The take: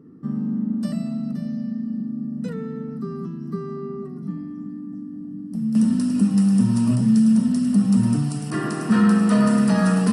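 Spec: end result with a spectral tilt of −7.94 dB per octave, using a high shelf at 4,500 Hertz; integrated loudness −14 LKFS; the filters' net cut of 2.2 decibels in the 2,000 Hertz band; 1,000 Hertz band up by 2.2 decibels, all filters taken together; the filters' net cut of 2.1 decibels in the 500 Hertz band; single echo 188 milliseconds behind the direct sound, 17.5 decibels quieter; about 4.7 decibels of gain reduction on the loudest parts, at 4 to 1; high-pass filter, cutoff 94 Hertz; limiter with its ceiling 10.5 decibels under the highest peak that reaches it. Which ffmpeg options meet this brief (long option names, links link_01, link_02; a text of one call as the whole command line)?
ffmpeg -i in.wav -af "highpass=94,equalizer=frequency=500:width_type=o:gain=-4,equalizer=frequency=1000:width_type=o:gain=5.5,equalizer=frequency=2000:width_type=o:gain=-3.5,highshelf=frequency=4500:gain=-7.5,acompressor=threshold=-19dB:ratio=4,alimiter=limit=-23dB:level=0:latency=1,aecho=1:1:188:0.133,volume=16.5dB" out.wav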